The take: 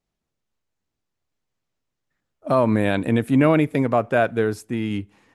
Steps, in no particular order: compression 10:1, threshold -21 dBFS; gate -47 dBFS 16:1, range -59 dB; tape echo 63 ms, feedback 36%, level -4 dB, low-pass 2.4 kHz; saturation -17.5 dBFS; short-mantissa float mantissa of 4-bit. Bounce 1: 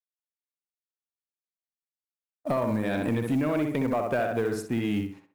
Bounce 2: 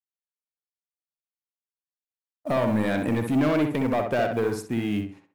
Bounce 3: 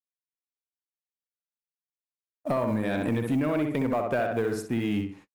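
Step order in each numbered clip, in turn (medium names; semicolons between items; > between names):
gate > tape echo > compression > saturation > short-mantissa float; gate > saturation > short-mantissa float > compression > tape echo; short-mantissa float > tape echo > compression > saturation > gate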